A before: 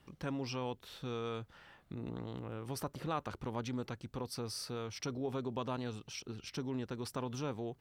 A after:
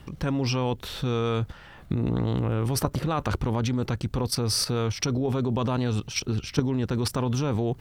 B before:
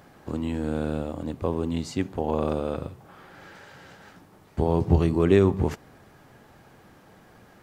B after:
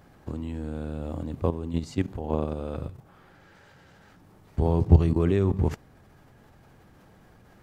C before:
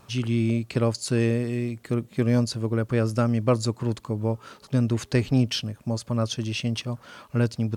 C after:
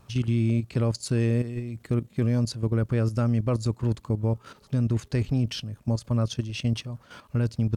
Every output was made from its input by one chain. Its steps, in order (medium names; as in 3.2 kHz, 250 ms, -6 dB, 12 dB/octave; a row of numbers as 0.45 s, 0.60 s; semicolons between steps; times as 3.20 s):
bass shelf 130 Hz +11 dB; level held to a coarse grid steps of 11 dB; normalise loudness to -27 LUFS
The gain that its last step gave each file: +19.0 dB, +0.5 dB, -0.5 dB